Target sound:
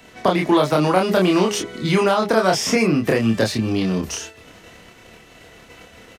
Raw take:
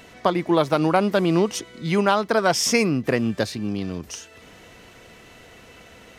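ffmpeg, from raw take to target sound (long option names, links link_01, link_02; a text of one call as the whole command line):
ffmpeg -i in.wav -filter_complex "[0:a]bandreject=frequency=206.2:width_type=h:width=4,bandreject=frequency=412.4:width_type=h:width=4,bandreject=frequency=618.6:width_type=h:width=4,bandreject=frequency=824.8:width_type=h:width=4,acrossover=split=970|2800[link_01][link_02][link_03];[link_01]acompressor=threshold=-25dB:ratio=4[link_04];[link_02]acompressor=threshold=-29dB:ratio=4[link_05];[link_03]acompressor=threshold=-36dB:ratio=4[link_06];[link_04][link_05][link_06]amix=inputs=3:normalize=0,agate=range=-10dB:threshold=-45dB:ratio=16:detection=peak,acrossover=split=150|840|6600[link_07][link_08][link_09][link_10];[link_09]alimiter=level_in=1dB:limit=-24dB:level=0:latency=1:release=33,volume=-1dB[link_11];[link_07][link_08][link_11][link_10]amix=inputs=4:normalize=0,asplit=2[link_12][link_13];[link_13]adelay=27,volume=-2.5dB[link_14];[link_12][link_14]amix=inputs=2:normalize=0,volume=8dB" out.wav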